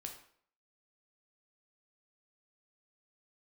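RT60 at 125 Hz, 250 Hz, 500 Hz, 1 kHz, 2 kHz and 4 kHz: 0.50, 0.55, 0.60, 0.60, 0.50, 0.45 s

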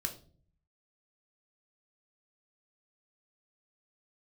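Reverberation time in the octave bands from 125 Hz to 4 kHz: 0.90, 0.80, 0.55, 0.35, 0.30, 0.35 s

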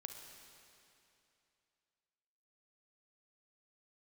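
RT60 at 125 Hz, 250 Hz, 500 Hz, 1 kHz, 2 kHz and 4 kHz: 2.9, 2.8, 2.8, 2.8, 2.7, 2.6 s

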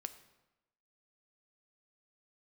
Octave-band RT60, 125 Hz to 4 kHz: 0.95, 1.0, 1.0, 1.0, 0.90, 0.75 s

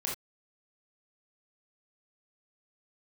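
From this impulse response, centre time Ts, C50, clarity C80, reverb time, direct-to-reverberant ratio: 34 ms, 4.0 dB, 13.0 dB, not exponential, -3.5 dB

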